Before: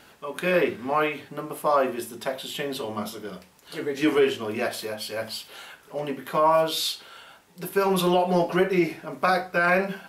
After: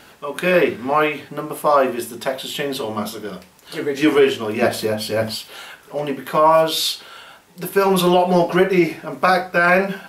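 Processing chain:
0:04.62–0:05.35: low-shelf EQ 450 Hz +11 dB
level +6.5 dB

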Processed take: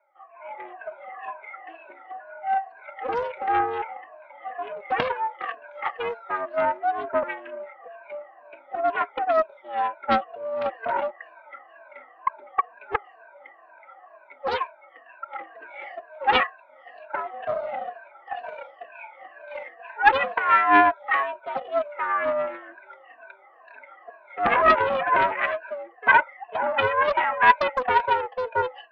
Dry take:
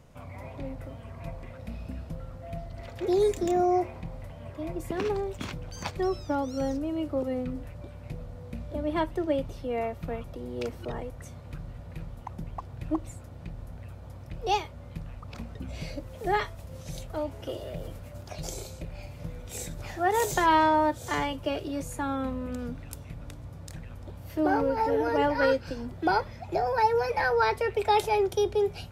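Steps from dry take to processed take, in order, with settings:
rippled gain that drifts along the octave scale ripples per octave 1.4, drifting −2.1 Hz, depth 24 dB
noise reduction from a noise print of the clip's start 8 dB
automatic gain control gain up to 13 dB
flanger 1.7 Hz, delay 3.7 ms, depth 1.4 ms, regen +18%
single-sideband voice off tune +95 Hz 540–2,100 Hz
highs frequency-modulated by the lows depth 0.54 ms

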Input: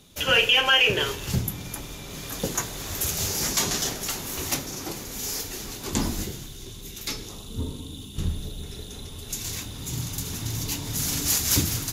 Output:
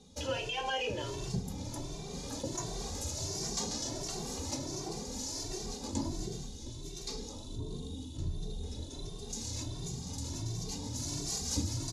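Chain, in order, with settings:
Bessel low-pass filter 6,300 Hz, order 6
flat-topped bell 2,000 Hz −11.5 dB
mains-hum notches 50/100/150/200 Hz
in parallel at −2 dB: compressor whose output falls as the input rises −37 dBFS
on the sum: barber-pole flanger 2.1 ms +1.4 Hz
level −6 dB

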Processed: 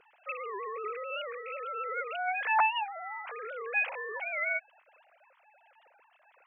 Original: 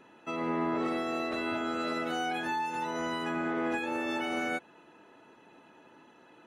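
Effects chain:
three sine waves on the formant tracks
dynamic equaliser 400 Hz, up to −4 dB, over −47 dBFS, Q 0.72
wow of a warped record 78 rpm, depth 160 cents

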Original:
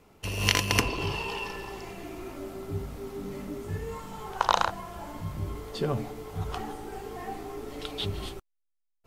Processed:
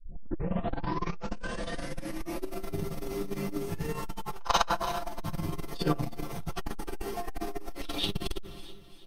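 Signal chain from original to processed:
turntable start at the beginning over 2.49 s
bass and treble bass −1 dB, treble +5 dB
notch filter 7,300 Hz, Q 7.2
comb filter 5.9 ms, depth 85%
repeating echo 330 ms, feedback 38%, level −16.5 dB
convolution reverb RT60 0.40 s, pre-delay 4 ms, DRR −4 dB
in parallel at −5 dB: hard clipping −11 dBFS, distortion −22 dB
on the sum: saturating transformer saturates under 230 Hz
level −6 dB

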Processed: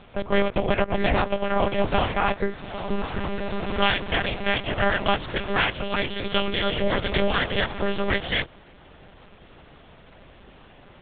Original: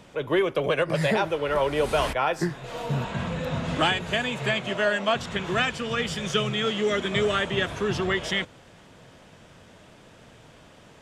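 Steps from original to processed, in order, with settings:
ring modulation 160 Hz
one-pitch LPC vocoder at 8 kHz 200 Hz
level +5 dB

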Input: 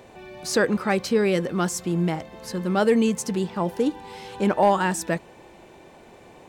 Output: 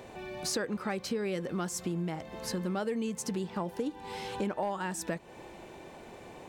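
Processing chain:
downward compressor 6 to 1, threshold −31 dBFS, peak gain reduction 16 dB

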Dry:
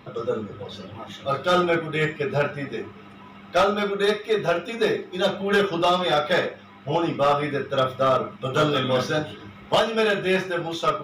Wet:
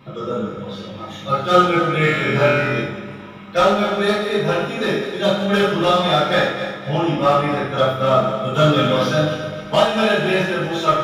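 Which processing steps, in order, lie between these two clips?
feedback delay that plays each chunk backwards 130 ms, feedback 63%, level −9.5 dB
0:02.01–0:02.81: flutter between parallel walls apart 4.1 metres, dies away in 0.84 s
coupled-rooms reverb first 0.53 s, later 2.2 s, DRR −6.5 dB
level −3.5 dB

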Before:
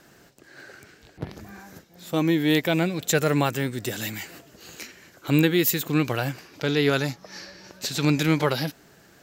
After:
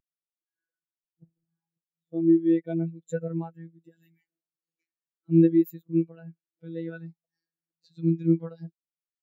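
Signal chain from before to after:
phases set to zero 165 Hz
every bin expanded away from the loudest bin 2.5 to 1
level −7 dB

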